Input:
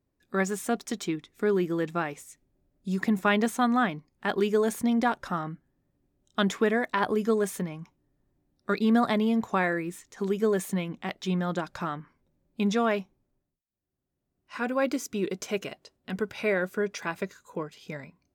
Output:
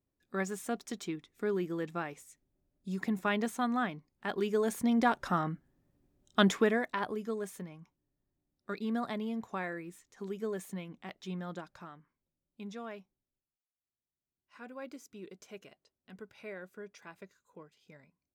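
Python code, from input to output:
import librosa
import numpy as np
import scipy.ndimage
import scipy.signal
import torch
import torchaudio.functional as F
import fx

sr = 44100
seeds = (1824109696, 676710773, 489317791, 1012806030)

y = fx.gain(x, sr, db=fx.line((4.34, -7.5), (5.4, 0.5), (6.45, 0.5), (7.21, -11.5), (11.53, -11.5), (11.95, -18.0)))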